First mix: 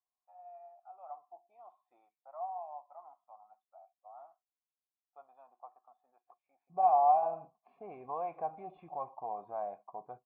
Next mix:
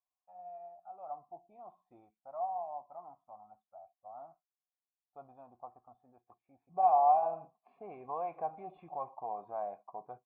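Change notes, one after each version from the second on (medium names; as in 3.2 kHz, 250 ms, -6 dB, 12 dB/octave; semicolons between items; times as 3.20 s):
first voice: remove high-pass 780 Hz 12 dB/octave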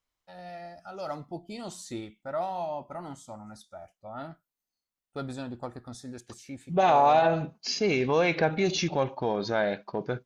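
master: remove cascade formant filter a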